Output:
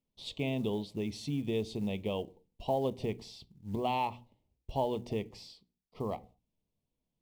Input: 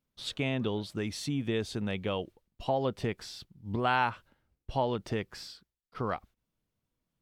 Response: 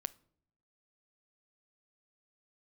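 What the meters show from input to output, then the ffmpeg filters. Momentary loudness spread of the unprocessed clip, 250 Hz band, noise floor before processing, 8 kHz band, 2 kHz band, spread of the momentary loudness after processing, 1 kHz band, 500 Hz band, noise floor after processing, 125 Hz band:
16 LU, -1.5 dB, under -85 dBFS, -7.0 dB, -10.5 dB, 13 LU, -3.5 dB, -1.0 dB, under -85 dBFS, -3.0 dB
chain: -filter_complex "[0:a]asuperstop=centerf=1500:order=4:qfactor=1.1,aemphasis=mode=reproduction:type=cd,bandreject=f=60:t=h:w=6,bandreject=f=120:t=h:w=6,bandreject=f=180:t=h:w=6,bandreject=f=240:t=h:w=6,bandreject=f=300:t=h:w=6[s0];[1:a]atrim=start_sample=2205,afade=t=out:st=0.39:d=0.01,atrim=end_sample=17640,asetrate=66150,aresample=44100[s1];[s0][s1]afir=irnorm=-1:irlink=0,acrusher=bits=8:mode=log:mix=0:aa=0.000001,volume=1.5"

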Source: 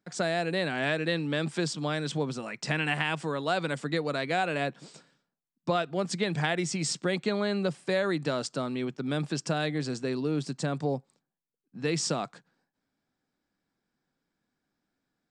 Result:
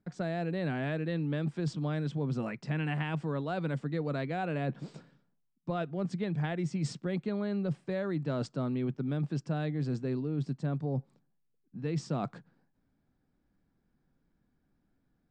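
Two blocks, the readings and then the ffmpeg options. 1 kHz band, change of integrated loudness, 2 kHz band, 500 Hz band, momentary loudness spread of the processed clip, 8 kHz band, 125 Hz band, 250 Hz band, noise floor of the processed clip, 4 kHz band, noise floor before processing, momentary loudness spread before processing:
-7.5 dB, -4.0 dB, -10.0 dB, -6.0 dB, 3 LU, -17.0 dB, +1.5 dB, -1.5 dB, -76 dBFS, -14.0 dB, under -85 dBFS, 5 LU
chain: -af "aemphasis=mode=reproduction:type=riaa,areverse,acompressor=threshold=0.0316:ratio=6,areverse"

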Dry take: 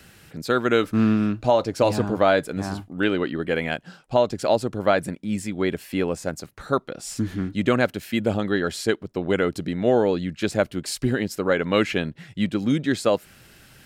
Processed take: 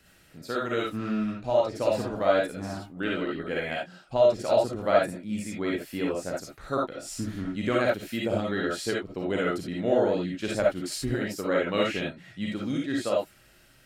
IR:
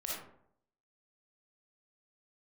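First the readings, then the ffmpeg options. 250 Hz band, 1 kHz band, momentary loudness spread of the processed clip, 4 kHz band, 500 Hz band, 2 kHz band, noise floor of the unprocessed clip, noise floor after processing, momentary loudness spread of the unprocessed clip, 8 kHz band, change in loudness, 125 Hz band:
-6.5 dB, -4.5 dB, 10 LU, -4.5 dB, -3.0 dB, -5.0 dB, -52 dBFS, -58 dBFS, 9 LU, -4.5 dB, -4.5 dB, -7.5 dB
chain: -filter_complex "[0:a]dynaudnorm=f=720:g=7:m=1.78[s0];[1:a]atrim=start_sample=2205,atrim=end_sample=3969[s1];[s0][s1]afir=irnorm=-1:irlink=0,volume=0.422"

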